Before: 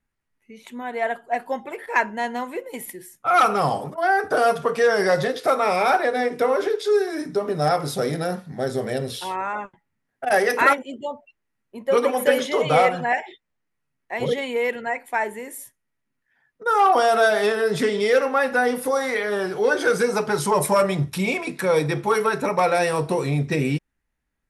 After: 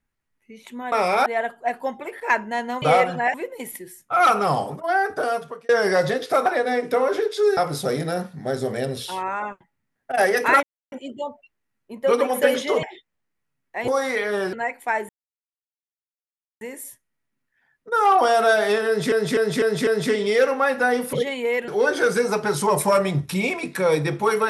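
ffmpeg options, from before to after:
-filter_complex "[0:a]asplit=19[s0][s1][s2][s3][s4][s5][s6][s7][s8][s9][s10][s11][s12][s13][s14][s15][s16][s17][s18];[s0]atrim=end=0.922[s19];[s1]atrim=start=5.598:end=5.942[s20];[s2]atrim=start=0.918:end=2.482[s21];[s3]atrim=start=12.668:end=13.192[s22];[s4]atrim=start=2.478:end=4.83,asetpts=PTS-STARTPTS,afade=t=out:st=1.282:d=1.07:c=qsin[s23];[s5]atrim=start=4.83:end=5.602,asetpts=PTS-STARTPTS,afade=t=in:d=0.004:c=hsin[s24];[s6]atrim=start=5.938:end=7.052[s25];[s7]atrim=start=7.698:end=10.76,asetpts=PTS-STARTPTS,afade=t=out:st=3.058:d=0.004:c=hsin,apad=pad_dur=0.29[s26];[s8]atrim=start=10.76:end=12.672,asetpts=PTS-STARTPTS,afade=t=in:d=0.004:c=hsin[s27];[s9]atrim=start=13.188:end=14.242[s28];[s10]atrim=start=18.868:end=19.522[s29];[s11]atrim=start=14.788:end=15.35,asetpts=PTS-STARTPTS,afade=t=out:st=0.558:d=0.004:c=hsin,apad=pad_dur=1.52[s30];[s12]atrim=start=15.35:end=17.862,asetpts=PTS-STARTPTS,afade=t=in:d=0.004:c=hsin[s31];[s13]atrim=start=17.608:end=17.862[s32];[s14]atrim=start=17.608:end=17.862[s33];[s15]atrim=start=17.608:end=17.862[s34];[s16]atrim=start=17.608:end=18.872[s35];[s17]atrim=start=14.238:end=14.792[s36];[s18]atrim=start=19.518[s37];[s19][s20]acrossfade=d=0.004:c1=hsin:c2=hsin[s38];[s38][s21]acrossfade=d=0.004:c1=hsin:c2=hsin[s39];[s39][s22]acrossfade=d=0.004:c1=hsin:c2=hsin[s40];[s23][s24]concat=n=2:v=0:a=1[s41];[s40][s41]acrossfade=d=0.004:c1=hsin:c2=hsin[s42];[s42][s25]acrossfade=d=0.004:c1=hsin:c2=hsin[s43];[s26][s27]concat=n=2:v=0:a=1[s44];[s43][s44]acrossfade=d=0.004:c1=hsin:c2=hsin[s45];[s45][s28]acrossfade=d=0.004:c1=hsin:c2=hsin[s46];[s46][s29]acrossfade=d=0.004:c1=hsin:c2=hsin[s47];[s30][s31]concat=n=2:v=0:a=1[s48];[s47][s48]acrossfade=d=0.004:c1=hsin:c2=hsin[s49];[s49][s32]acrossfade=d=0.004:c1=hsin:c2=hsin[s50];[s50][s33]acrossfade=d=0.004:c1=hsin:c2=hsin[s51];[s51][s34]acrossfade=d=0.004:c1=hsin:c2=hsin[s52];[s52][s35]acrossfade=d=0.004:c1=hsin:c2=hsin[s53];[s53][s36]acrossfade=d=0.004:c1=hsin:c2=hsin[s54];[s54][s37]acrossfade=d=0.004:c1=hsin:c2=hsin"

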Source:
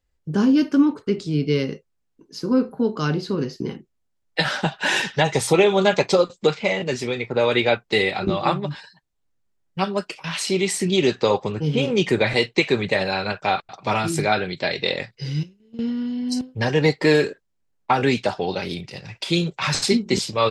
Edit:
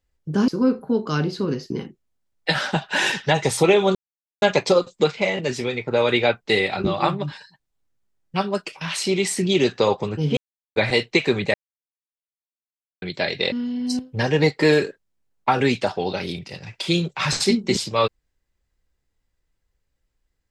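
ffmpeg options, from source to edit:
-filter_complex "[0:a]asplit=8[s0][s1][s2][s3][s4][s5][s6][s7];[s0]atrim=end=0.482[s8];[s1]atrim=start=2.378:end=5.85,asetpts=PTS-STARTPTS,afade=t=out:st=3.468:d=0.004:c=hsin,apad=pad_dur=0.47[s9];[s2]atrim=start=5.85:end=11.8,asetpts=PTS-STARTPTS,afade=t=in:d=0.004:c=hsin,afade=t=out:st=5.946:d=0.004:c=hsin[s10];[s3]atrim=start=11.8:end=12.19,asetpts=PTS-STARTPTS,volume=0[s11];[s4]atrim=start=12.19:end=12.97,asetpts=PTS-STARTPTS,afade=t=in:d=0.004:c=hsin,afade=t=out:st=0.776:d=0.004:c=hsin[s12];[s5]atrim=start=12.97:end=14.45,asetpts=PTS-STARTPTS,volume=0[s13];[s6]atrim=start=14.45:end=14.952,asetpts=PTS-STARTPTS,afade=t=in:d=0.004:c=hsin[s14];[s7]atrim=start=15.938[s15];[s9][s10][s11][s12][s13][s14]concat=n=6:v=0:a=1[s16];[s8][s16]acrossfade=d=0.004:c1=hsin:c2=hsin[s17];[s17][s15]acrossfade=d=0.004:c1=hsin:c2=hsin"

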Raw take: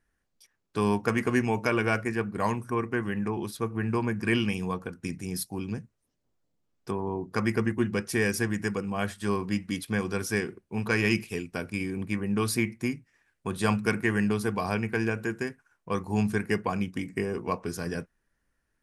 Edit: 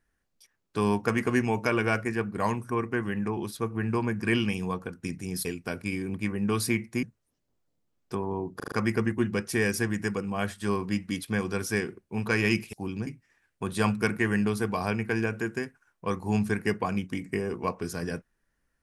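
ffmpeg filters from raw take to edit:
-filter_complex "[0:a]asplit=9[s0][s1][s2][s3][s4][s5][s6][s7][s8];[s0]atrim=end=5.452[s9];[s1]atrim=start=11.328:end=12.912[s10];[s2]atrim=start=5.788:end=7.362[s11];[s3]atrim=start=7.318:end=7.362[s12];[s4]atrim=start=7.318:end=7.362[s13];[s5]atrim=start=7.318:end=7.362[s14];[s6]atrim=start=7.318:end=11.332[s15];[s7]atrim=start=5.448:end=5.792[s16];[s8]atrim=start=12.908[s17];[s9][s10]acrossfade=d=0.004:c1=hsin:c2=hsin[s18];[s18][s11]acrossfade=d=0.004:c1=hsin:c2=hsin[s19];[s19][s12]acrossfade=d=0.004:c1=hsin:c2=hsin[s20];[s20][s13]acrossfade=d=0.004:c1=hsin:c2=hsin[s21];[s21][s14]acrossfade=d=0.004:c1=hsin:c2=hsin[s22];[s22][s15]acrossfade=d=0.004:c1=hsin:c2=hsin[s23];[s23][s16]acrossfade=d=0.004:c1=hsin:c2=hsin[s24];[s24][s17]acrossfade=d=0.004:c1=hsin:c2=hsin"

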